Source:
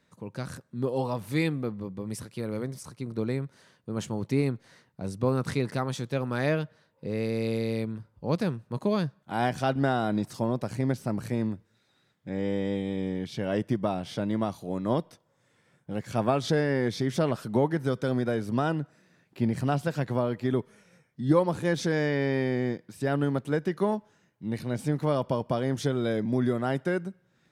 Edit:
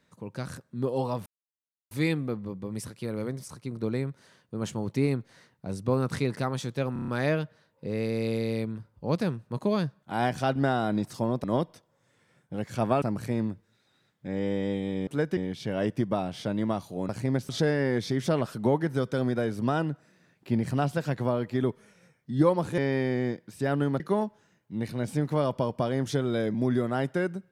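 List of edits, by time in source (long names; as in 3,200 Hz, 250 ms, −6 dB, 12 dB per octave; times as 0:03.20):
0:01.26: splice in silence 0.65 s
0:06.28: stutter 0.03 s, 6 plays
0:10.64–0:11.04: swap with 0:14.81–0:16.39
0:21.68–0:22.19: remove
0:23.41–0:23.71: move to 0:13.09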